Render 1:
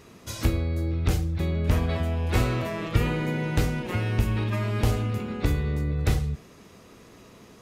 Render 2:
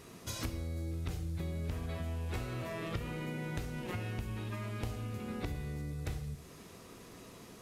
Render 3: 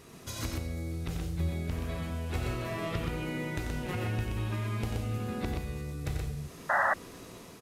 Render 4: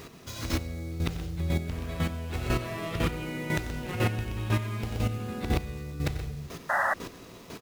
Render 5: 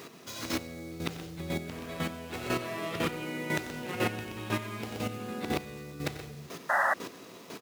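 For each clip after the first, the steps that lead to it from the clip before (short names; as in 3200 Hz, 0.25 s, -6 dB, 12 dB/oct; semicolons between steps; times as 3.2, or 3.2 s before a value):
compressor 6:1, threshold -33 dBFS, peak gain reduction 16.5 dB; band noise 3300–13000 Hz -62 dBFS; non-linear reverb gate 0.26 s falling, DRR 9.5 dB; gain -3 dB
AGC gain up to 3 dB; loudspeakers at several distances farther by 31 m -7 dB, 43 m -4 dB; painted sound noise, 6.69–6.94, 540–2000 Hz -26 dBFS
median filter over 5 samples; high shelf 4400 Hz +7 dB; chopper 2 Hz, depth 65%, duty 15%; gain +9 dB
HPF 200 Hz 12 dB/oct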